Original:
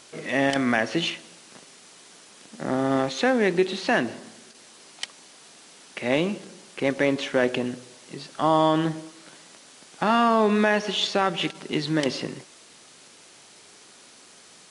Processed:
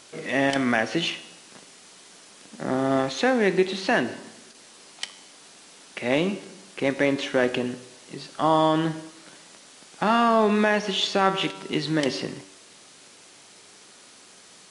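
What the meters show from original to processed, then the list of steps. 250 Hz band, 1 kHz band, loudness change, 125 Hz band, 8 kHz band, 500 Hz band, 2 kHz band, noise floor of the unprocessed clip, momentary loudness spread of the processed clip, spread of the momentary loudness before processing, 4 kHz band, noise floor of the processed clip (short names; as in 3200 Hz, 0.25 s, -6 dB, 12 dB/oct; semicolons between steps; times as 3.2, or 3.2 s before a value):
0.0 dB, +0.5 dB, 0.0 dB, 0.0 dB, +0.5 dB, 0.0 dB, +0.5 dB, -51 dBFS, 16 LU, 18 LU, +0.5 dB, -51 dBFS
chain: resonator 96 Hz, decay 0.81 s, harmonics all, mix 60%; gain +7 dB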